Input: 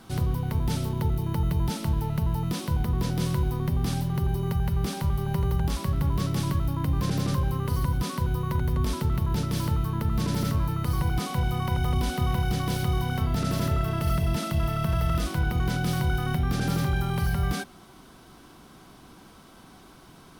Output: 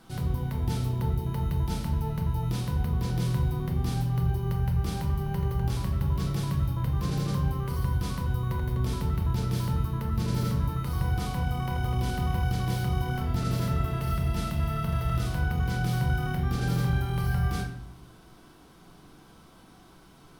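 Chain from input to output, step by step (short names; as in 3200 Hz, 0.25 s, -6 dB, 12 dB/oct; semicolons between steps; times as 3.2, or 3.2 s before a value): shoebox room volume 160 m³, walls mixed, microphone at 0.72 m; gain -6 dB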